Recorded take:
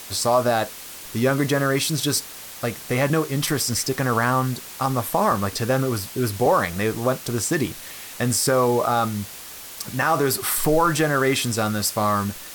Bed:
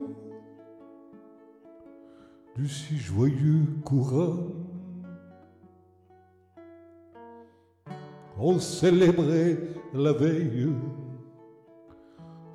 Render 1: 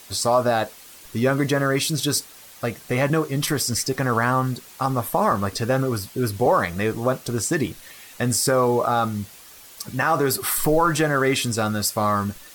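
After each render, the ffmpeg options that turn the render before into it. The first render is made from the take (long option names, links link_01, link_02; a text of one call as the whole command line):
ffmpeg -i in.wav -af "afftdn=noise_reduction=8:noise_floor=-38" out.wav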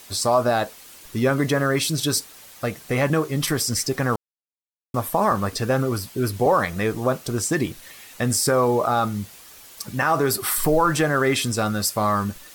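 ffmpeg -i in.wav -filter_complex "[0:a]asplit=3[link_01][link_02][link_03];[link_01]atrim=end=4.16,asetpts=PTS-STARTPTS,afade=type=out:start_time=4.156:duration=0.004:curve=hsin[link_04];[link_02]atrim=start=4.16:end=4.94,asetpts=PTS-STARTPTS,volume=0[link_05];[link_03]atrim=start=4.94,asetpts=PTS-STARTPTS,afade=type=in:duration=0.004:curve=hsin[link_06];[link_04][link_05][link_06]concat=n=3:v=0:a=1" out.wav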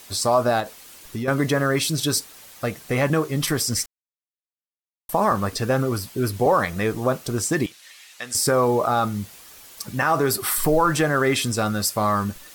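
ffmpeg -i in.wav -filter_complex "[0:a]asettb=1/sr,asplit=3[link_01][link_02][link_03];[link_01]atrim=end=0.604[link_04];[link_02]atrim=start=0.6:end=1.28,asetpts=PTS-STARTPTS,afade=type=in:duration=0.004:curve=qsin,afade=type=out:start_time=0.676:duration=0.004:curve=qsin,acompressor=threshold=-24dB:ratio=6:attack=3.2:release=140:knee=1:detection=peak[link_05];[link_03]atrim=start=1.276[link_06];[link_04][link_05]acrossfade=duration=0.004:curve1=hsin:curve2=qsin[link_07];[link_07][link_06]acrossfade=duration=0.004:curve1=qsin:curve2=hsin,asettb=1/sr,asplit=3[link_08][link_09][link_10];[link_08]atrim=end=7.664[link_11];[link_09]atrim=start=7.66:end=8.35,asetpts=PTS-STARTPTS,afade=type=in:duration=0.004:curve=qsin,afade=type=out:start_time=0.686:duration=0.004:curve=qsin,bandpass=frequency=3900:width_type=q:width=0.58[link_12];[link_10]atrim=start=8.346[link_13];[link_11][link_12]acrossfade=duration=0.004:curve1=hsin:curve2=qsin[link_14];[link_14][link_13]acrossfade=duration=0.004:curve1=qsin:curve2=hsin,asplit=3[link_15][link_16][link_17];[link_15]atrim=end=3.86,asetpts=PTS-STARTPTS,afade=type=out:start_time=3.856:duration=0.004:curve=hsin[link_18];[link_16]atrim=start=3.86:end=5.09,asetpts=PTS-STARTPTS,volume=0[link_19];[link_17]atrim=start=5.09,asetpts=PTS-STARTPTS,afade=type=in:duration=0.004:curve=hsin[link_20];[link_18][link_19][link_20]concat=n=3:v=0:a=1" out.wav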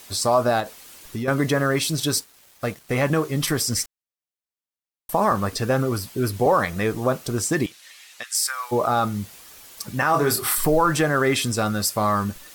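ffmpeg -i in.wav -filter_complex "[0:a]asettb=1/sr,asplit=3[link_01][link_02][link_03];[link_01]atrim=end=1.714[link_04];[link_02]atrim=start=1.71:end=3.22,asetpts=PTS-STARTPTS,afade=type=in:duration=0.004:curve=qsin,afade=type=out:start_time=1.506:duration=0.004:curve=qsin,aeval=exprs='sgn(val(0))*max(abs(val(0))-0.00562,0)':channel_layout=same[link_05];[link_03]atrim=start=3.216[link_06];[link_04][link_05]acrossfade=duration=0.004:curve1=hsin:curve2=qsin[link_07];[link_07][link_06]acrossfade=duration=0.004:curve1=qsin:curve2=hsin,asplit=3[link_08][link_09][link_10];[link_08]afade=type=out:start_time=8.22:duration=0.02[link_11];[link_09]highpass=frequency=1300:width=0.5412,highpass=frequency=1300:width=1.3066,afade=type=in:start_time=8.22:duration=0.02,afade=type=out:start_time=8.71:duration=0.02[link_12];[link_10]afade=type=in:start_time=8.71:duration=0.02[link_13];[link_11][link_12][link_13]amix=inputs=3:normalize=0,asettb=1/sr,asplit=3[link_14][link_15][link_16];[link_14]atrim=end=10.114[link_17];[link_15]atrim=start=10.11:end=10.55,asetpts=PTS-STARTPTS,afade=type=in:duration=0.004:curve=qsin,afade=type=out:start_time=0.436:duration=0.004:curve=qsin,asplit=2[link_18][link_19];[link_19]adelay=27,volume=-4.5dB[link_20];[link_18][link_20]amix=inputs=2:normalize=0,atrim=end_sample=19404[link_21];[link_16]atrim=start=10.546[link_22];[link_17][link_21]acrossfade=duration=0.004:curve1=hsin:curve2=qsin[link_23];[link_23][link_22]acrossfade=duration=0.004:curve1=qsin:curve2=hsin" out.wav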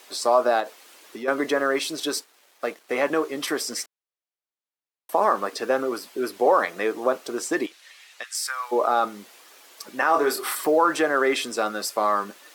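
ffmpeg -i in.wav -af "highpass=frequency=310:width=0.5412,highpass=frequency=310:width=1.3066,aemphasis=mode=reproduction:type=cd" out.wav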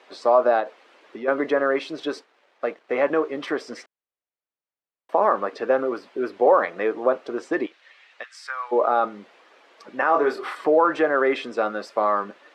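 ffmpeg -i in.wav -af "lowpass=2500,equalizer=frequency=540:width_type=o:width=0.6:gain=3.5" out.wav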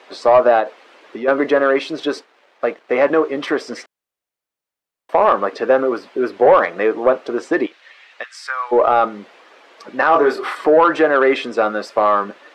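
ffmpeg -i in.wav -af "acontrast=90" out.wav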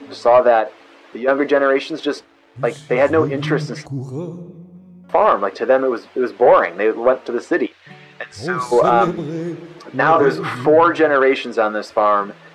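ffmpeg -i in.wav -i bed.wav -filter_complex "[1:a]volume=-2dB[link_01];[0:a][link_01]amix=inputs=2:normalize=0" out.wav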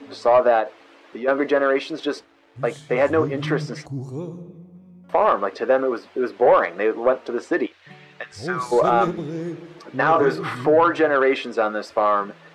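ffmpeg -i in.wav -af "volume=-4dB" out.wav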